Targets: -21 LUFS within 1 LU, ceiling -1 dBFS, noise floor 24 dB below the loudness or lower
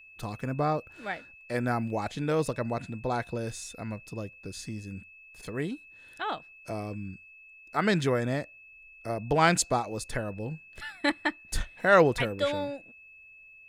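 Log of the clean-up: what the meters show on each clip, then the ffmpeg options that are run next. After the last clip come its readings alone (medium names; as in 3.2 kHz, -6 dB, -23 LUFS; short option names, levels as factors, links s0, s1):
steady tone 2.6 kHz; tone level -50 dBFS; loudness -30.0 LUFS; peak level -8.0 dBFS; loudness target -21.0 LUFS
-> -af "bandreject=f=2600:w=30"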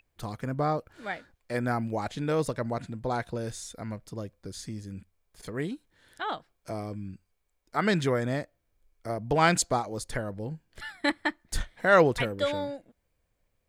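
steady tone not found; loudness -30.0 LUFS; peak level -8.0 dBFS; loudness target -21.0 LUFS
-> -af "volume=2.82,alimiter=limit=0.891:level=0:latency=1"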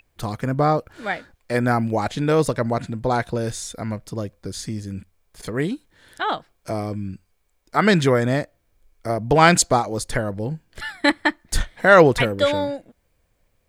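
loudness -21.0 LUFS; peak level -1.0 dBFS; noise floor -68 dBFS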